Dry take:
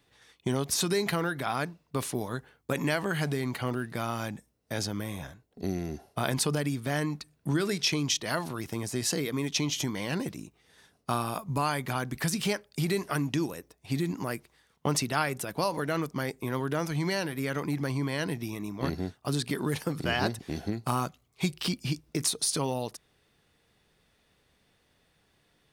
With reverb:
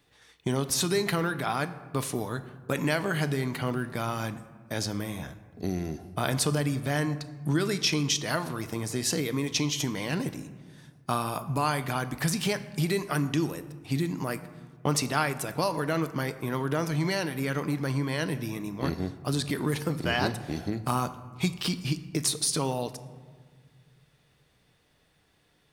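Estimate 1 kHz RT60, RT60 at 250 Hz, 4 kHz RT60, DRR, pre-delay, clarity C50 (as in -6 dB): 1.5 s, 2.5 s, 0.85 s, 11.0 dB, 7 ms, 14.0 dB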